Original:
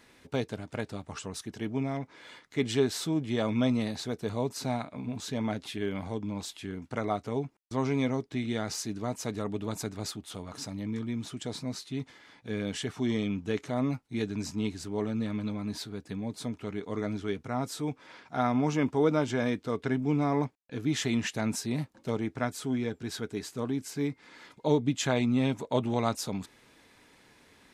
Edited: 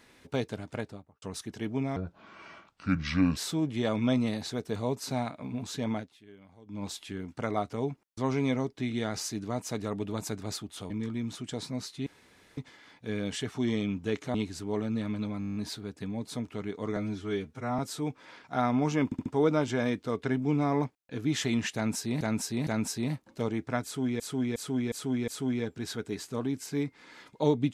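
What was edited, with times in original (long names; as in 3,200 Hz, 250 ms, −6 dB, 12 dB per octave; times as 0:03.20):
0:00.70–0:01.22: fade out and dull
0:01.96–0:02.90: play speed 67%
0:05.46–0:06.37: duck −20 dB, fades 0.18 s
0:10.44–0:10.83: remove
0:11.99: splice in room tone 0.51 s
0:13.76–0:14.59: remove
0:15.64: stutter 0.02 s, 9 plays
0:17.05–0:17.60: time-stretch 1.5×
0:18.86: stutter 0.07 s, 4 plays
0:21.35–0:21.81: repeat, 3 plays
0:22.52–0:22.88: repeat, 5 plays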